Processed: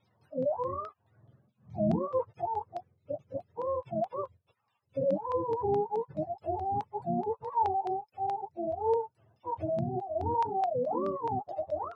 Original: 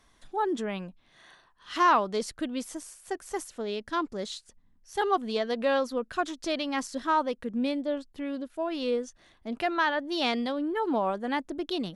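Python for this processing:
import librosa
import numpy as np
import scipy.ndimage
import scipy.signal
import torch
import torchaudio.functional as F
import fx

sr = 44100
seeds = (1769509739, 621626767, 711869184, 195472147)

y = fx.octave_mirror(x, sr, pivot_hz=470.0)
y = fx.filter_lfo_lowpass(y, sr, shape='saw_down', hz=4.7, low_hz=850.0, high_hz=4300.0, q=1.4)
y = fx.low_shelf_res(y, sr, hz=380.0, db=-7.5, q=1.5)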